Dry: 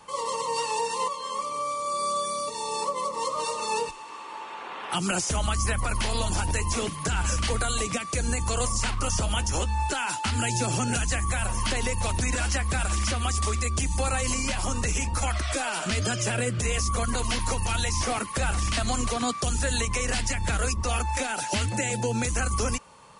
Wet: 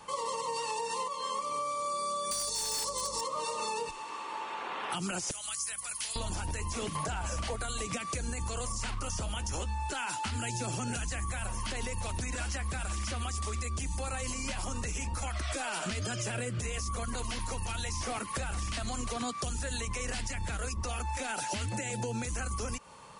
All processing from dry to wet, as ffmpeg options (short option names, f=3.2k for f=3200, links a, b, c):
-filter_complex "[0:a]asettb=1/sr,asplit=3[a][b][c];[a]atrim=end=2.314[d];[b]atrim=start=2.31:end=3.21,asetpts=PTS-STARTPTS,afade=t=in:d=0.004:c=qsin,afade=t=out:st=0.896:d=0.004:c=qsin,highshelf=f=3.4k:t=q:w=1.5:g=13,aeval=exprs='val(0)+0.00562*(sin(2*PI*50*n/s)+sin(2*PI*2*50*n/s)/2+sin(2*PI*3*50*n/s)/3+sin(2*PI*4*50*n/s)/4+sin(2*PI*5*50*n/s)/5)':c=same,aeval=exprs='0.126*(abs(mod(val(0)/0.126+3,4)-2)-1)':c=same[e];[c]atrim=start=3.206[f];[d][e]acrossfade=d=0.004:c1=hsin:c2=qsin[g];[g][f]acrossfade=d=0.004:c1=qsin:c2=hsin,asettb=1/sr,asplit=3[h][i][j];[h]atrim=end=5.314[k];[i]atrim=start=5.31:end=6.16,asetpts=PTS-STARTPTS,afade=t=in:d=0.004:c=qsin,afade=t=out:st=0.846:d=0.004:c=qsin,aderivative,aeval=exprs='val(0)+0.000794*(sin(2*PI*60*n/s)+sin(2*PI*2*60*n/s)/2+sin(2*PI*3*60*n/s)/3+sin(2*PI*4*60*n/s)/4+sin(2*PI*5*60*n/s)/5)':c=same[l];[j]atrim=start=6.156[m];[k][l]acrossfade=d=0.004:c1=hsin:c2=qsin[n];[n][m]acrossfade=d=0.004:c1=qsin:c2=hsin,asettb=1/sr,asplit=3[o][p][q];[o]atrim=end=6.954[r];[p]atrim=start=6.95:end=7.56,asetpts=PTS-STARTPTS,afade=t=in:d=0.004:c=qsin,afade=t=out:st=0.606:d=0.004:c=qsin,equalizer=f=680:t=o:w=0.87:g=11,acontrast=32[s];[q]atrim=start=7.556[t];[r][s]acrossfade=d=0.004:c1=hsin:c2=qsin[u];[u][t]acrossfade=d=0.004:c1=qsin:c2=hsin,alimiter=limit=-21.5dB:level=0:latency=1:release=175,acompressor=threshold=-31dB:ratio=6"